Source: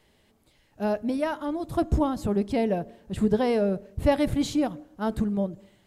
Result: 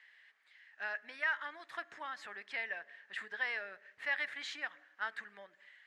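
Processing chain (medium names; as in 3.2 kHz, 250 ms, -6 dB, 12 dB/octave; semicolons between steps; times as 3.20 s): compression 2:1, threshold -28 dBFS, peak gain reduction 7 dB; ladder band-pass 1.9 kHz, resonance 75%; trim +12 dB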